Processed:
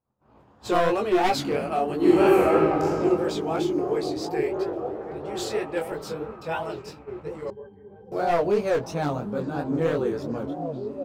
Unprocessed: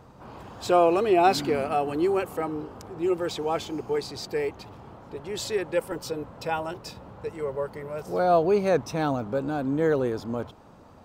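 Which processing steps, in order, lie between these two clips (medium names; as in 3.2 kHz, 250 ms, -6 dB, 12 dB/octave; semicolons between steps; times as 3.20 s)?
one-sided wavefolder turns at -16 dBFS; doubling 14 ms -8 dB; 1.95–2.86 s: reverb throw, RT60 2.6 s, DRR -10 dB; repeats whose band climbs or falls 766 ms, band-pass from 190 Hz, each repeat 0.7 oct, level -4 dB; chorus 3 Hz, delay 17.5 ms, depth 7.6 ms; expander -36 dBFS; 7.50–8.12 s: pitch-class resonator G, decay 0.1 s; tape noise reduction on one side only decoder only; trim +1.5 dB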